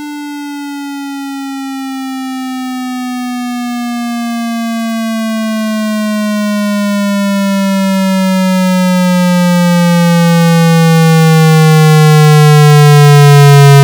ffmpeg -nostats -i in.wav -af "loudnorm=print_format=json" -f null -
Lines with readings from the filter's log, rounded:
"input_i" : "-7.2",
"input_tp" : "-0.4",
"input_lra" : "13.8",
"input_thresh" : "-17.9",